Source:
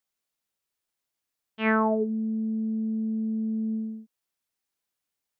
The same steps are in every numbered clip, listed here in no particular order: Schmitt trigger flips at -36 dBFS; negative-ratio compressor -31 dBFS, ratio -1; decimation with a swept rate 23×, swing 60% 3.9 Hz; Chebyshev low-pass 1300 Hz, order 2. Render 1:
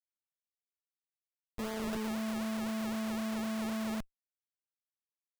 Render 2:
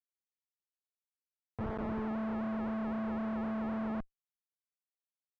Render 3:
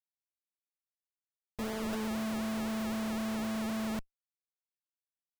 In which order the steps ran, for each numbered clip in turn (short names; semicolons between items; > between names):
negative-ratio compressor > Schmitt trigger > Chebyshev low-pass > decimation with a swept rate; negative-ratio compressor > decimation with a swept rate > Schmitt trigger > Chebyshev low-pass; Chebyshev low-pass > negative-ratio compressor > Schmitt trigger > decimation with a swept rate